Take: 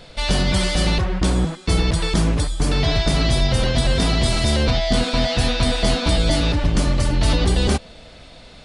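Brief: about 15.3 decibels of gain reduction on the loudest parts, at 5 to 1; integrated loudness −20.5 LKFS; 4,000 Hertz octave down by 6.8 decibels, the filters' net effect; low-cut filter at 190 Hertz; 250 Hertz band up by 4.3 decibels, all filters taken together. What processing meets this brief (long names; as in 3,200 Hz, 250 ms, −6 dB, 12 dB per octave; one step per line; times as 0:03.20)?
high-pass filter 190 Hz
parametric band 250 Hz +8 dB
parametric band 4,000 Hz −8.5 dB
downward compressor 5 to 1, threshold −32 dBFS
level +13.5 dB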